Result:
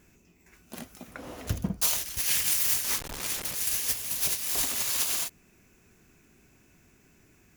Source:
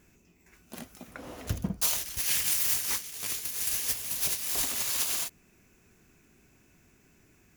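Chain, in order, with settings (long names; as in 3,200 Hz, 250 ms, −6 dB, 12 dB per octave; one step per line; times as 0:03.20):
0:02.84–0:03.55: hold until the input has moved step −31.5 dBFS
level +1.5 dB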